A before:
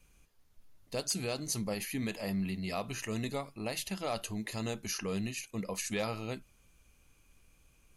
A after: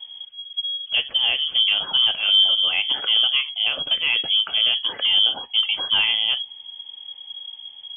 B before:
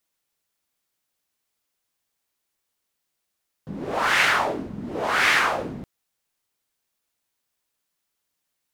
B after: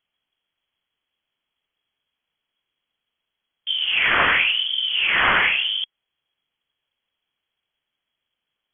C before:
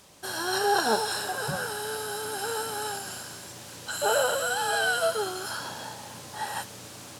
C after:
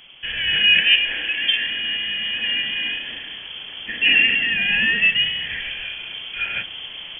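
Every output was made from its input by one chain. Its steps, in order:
tilt EQ -2.5 dB/octave; frequency inversion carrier 3.3 kHz; normalise loudness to -18 LUFS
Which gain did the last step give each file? +11.0 dB, +3.5 dB, +7.5 dB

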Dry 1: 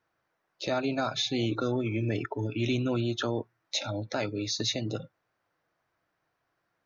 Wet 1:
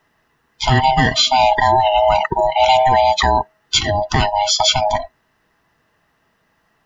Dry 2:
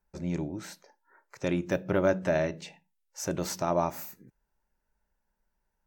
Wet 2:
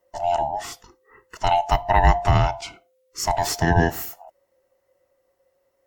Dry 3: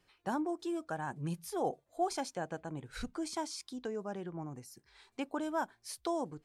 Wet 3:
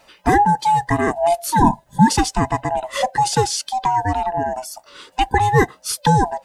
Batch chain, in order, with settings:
split-band scrambler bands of 500 Hz; peak normalisation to -1.5 dBFS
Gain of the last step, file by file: +15.5 dB, +9.5 dB, +20.5 dB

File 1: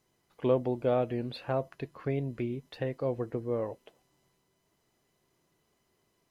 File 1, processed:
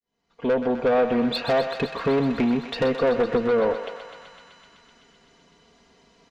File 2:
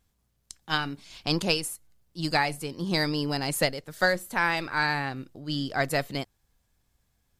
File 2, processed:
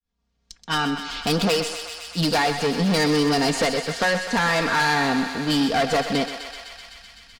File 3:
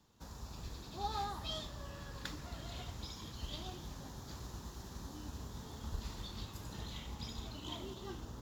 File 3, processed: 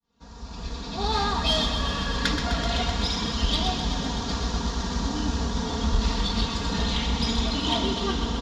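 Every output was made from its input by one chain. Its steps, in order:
fade-in on the opening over 1.61 s; low-pass 6 kHz 24 dB/octave; dynamic bell 540 Hz, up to +4 dB, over -37 dBFS, Q 0.82; comb 4.3 ms, depth 72%; compression 2.5:1, threshold -29 dBFS; valve stage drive 32 dB, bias 0.2; thinning echo 127 ms, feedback 83%, high-pass 580 Hz, level -8.5 dB; peak normalisation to -12 dBFS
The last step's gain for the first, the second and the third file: +15.5 dB, +15.0 dB, +19.0 dB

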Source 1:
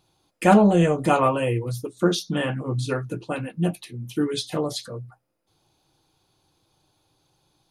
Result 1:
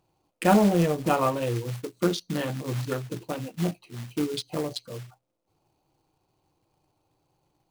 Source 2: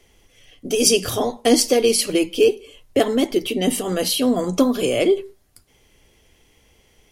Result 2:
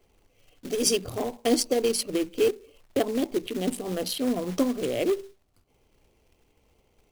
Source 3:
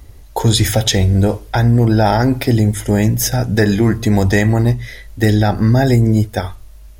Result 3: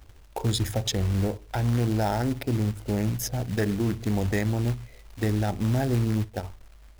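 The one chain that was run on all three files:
local Wiener filter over 25 samples; short-mantissa float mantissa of 2-bit; tape noise reduction on one side only encoder only; normalise loudness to -27 LUFS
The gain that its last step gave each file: -4.0 dB, -7.0 dB, -12.0 dB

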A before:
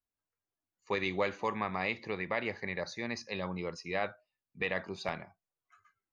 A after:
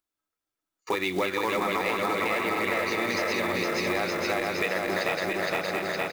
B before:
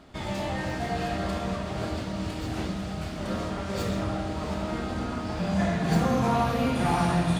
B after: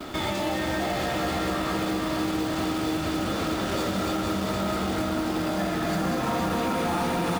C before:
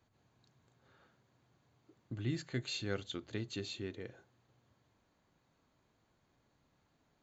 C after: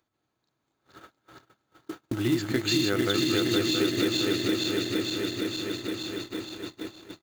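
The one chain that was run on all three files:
backward echo that repeats 232 ms, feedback 79%, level -1.5 dB; in parallel at -0.5 dB: upward compressor, threshold -27 dBFS; on the sum: bass shelf 260 Hz -8.5 dB; on a send: delay 673 ms -8.5 dB; on the sum: saturation -13 dBFS; small resonant body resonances 320/1300/3500 Hz, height 9 dB, ringing for 50 ms; short-mantissa float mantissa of 2-bit; compression, threshold -26 dBFS; gate -41 dBFS, range -36 dB; normalise loudness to -27 LUFS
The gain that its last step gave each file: +3.0 dB, +2.0 dB, +6.0 dB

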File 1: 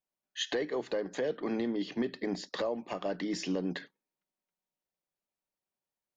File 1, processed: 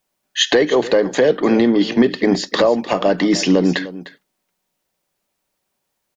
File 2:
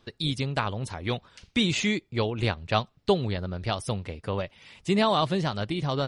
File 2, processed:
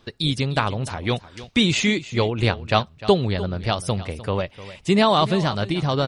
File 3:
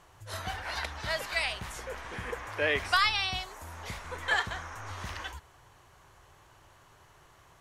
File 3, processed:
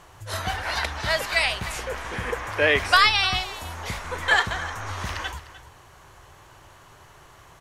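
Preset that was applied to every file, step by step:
delay 302 ms -16 dB; peak normalisation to -3 dBFS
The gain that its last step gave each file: +18.5 dB, +6.0 dB, +8.5 dB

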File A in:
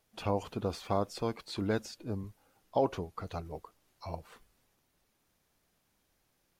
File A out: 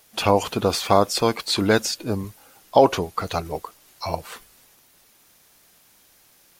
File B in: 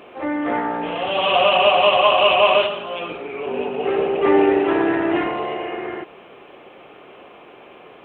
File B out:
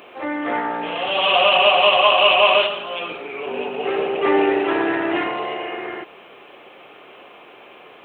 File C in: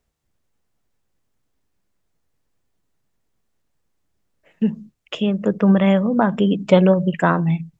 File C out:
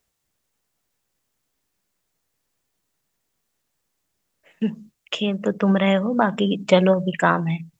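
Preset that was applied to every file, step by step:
tilt EQ +2 dB/octave; peak normalisation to -2 dBFS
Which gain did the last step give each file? +15.5 dB, +0.5 dB, +0.5 dB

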